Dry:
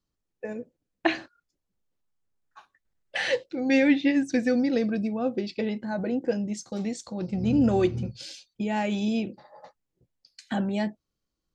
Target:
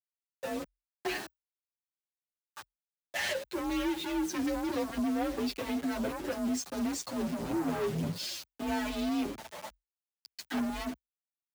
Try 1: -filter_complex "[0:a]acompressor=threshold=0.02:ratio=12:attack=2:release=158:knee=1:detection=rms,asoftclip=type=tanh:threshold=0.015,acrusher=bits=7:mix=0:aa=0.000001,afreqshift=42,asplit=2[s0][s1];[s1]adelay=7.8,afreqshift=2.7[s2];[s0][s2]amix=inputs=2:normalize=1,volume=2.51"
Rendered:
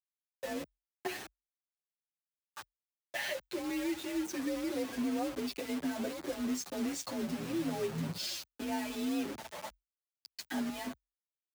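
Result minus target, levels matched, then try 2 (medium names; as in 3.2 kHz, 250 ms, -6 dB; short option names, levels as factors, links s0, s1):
compression: peak gain reduction +10.5 dB
-filter_complex "[0:a]acompressor=threshold=0.075:ratio=12:attack=2:release=158:knee=1:detection=rms,asoftclip=type=tanh:threshold=0.015,acrusher=bits=7:mix=0:aa=0.000001,afreqshift=42,asplit=2[s0][s1];[s1]adelay=7.8,afreqshift=2.7[s2];[s0][s2]amix=inputs=2:normalize=1,volume=2.51"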